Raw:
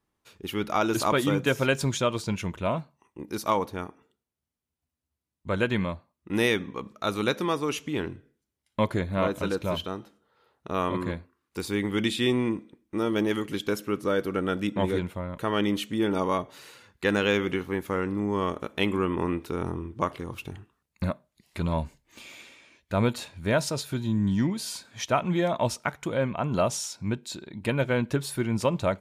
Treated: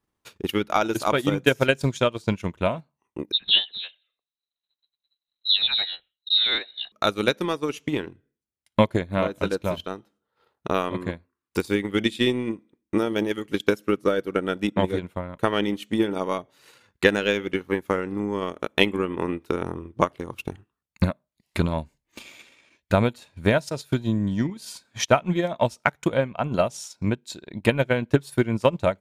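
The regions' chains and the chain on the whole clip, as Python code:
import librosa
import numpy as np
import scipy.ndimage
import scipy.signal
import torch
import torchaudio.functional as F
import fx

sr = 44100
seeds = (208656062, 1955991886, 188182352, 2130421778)

y = fx.chain(x, sr, fx.peak_eq(hz=66.0, db=4.5, octaves=2.5),
    fx.dispersion(late='highs', ms=84.0, hz=960.0),
    fx.freq_invert(carrier_hz=4000), at=(3.32, 6.92))
y = fx.dynamic_eq(y, sr, hz=1100.0, q=2.6, threshold_db=-40.0, ratio=4.0, max_db=-4)
y = fx.transient(y, sr, attack_db=11, sustain_db=-10)
y = F.gain(torch.from_numpy(y), -1.0).numpy()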